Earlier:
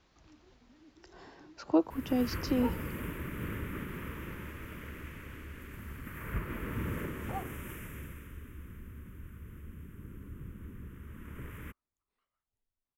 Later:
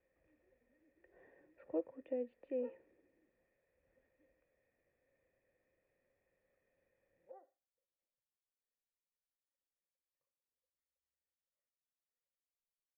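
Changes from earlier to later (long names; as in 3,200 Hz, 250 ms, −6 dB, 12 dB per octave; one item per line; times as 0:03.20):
first sound: muted
second sound −4.0 dB
master: add formant resonators in series e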